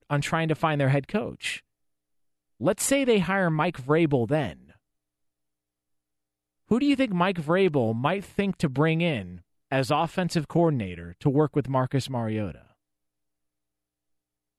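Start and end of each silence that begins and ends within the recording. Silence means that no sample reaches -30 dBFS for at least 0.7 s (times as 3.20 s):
1.56–2.61 s
4.51–6.71 s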